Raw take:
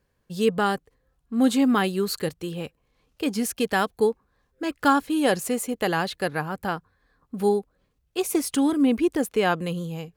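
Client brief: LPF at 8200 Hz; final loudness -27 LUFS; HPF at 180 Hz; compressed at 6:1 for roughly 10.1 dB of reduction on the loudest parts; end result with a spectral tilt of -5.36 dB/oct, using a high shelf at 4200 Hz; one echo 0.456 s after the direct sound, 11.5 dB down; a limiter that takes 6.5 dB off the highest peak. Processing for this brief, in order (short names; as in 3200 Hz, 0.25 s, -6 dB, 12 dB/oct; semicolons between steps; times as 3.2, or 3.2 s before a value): HPF 180 Hz; LPF 8200 Hz; high shelf 4200 Hz -7.5 dB; compressor 6:1, threshold -27 dBFS; limiter -23.5 dBFS; echo 0.456 s -11.5 dB; gain +7 dB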